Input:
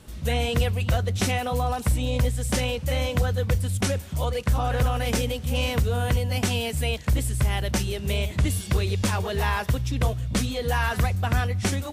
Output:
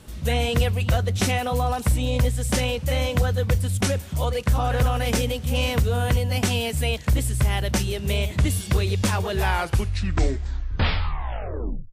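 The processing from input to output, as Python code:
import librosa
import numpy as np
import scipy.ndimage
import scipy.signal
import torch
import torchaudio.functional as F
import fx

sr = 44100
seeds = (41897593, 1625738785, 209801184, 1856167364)

y = fx.tape_stop_end(x, sr, length_s=2.67)
y = y * librosa.db_to_amplitude(2.0)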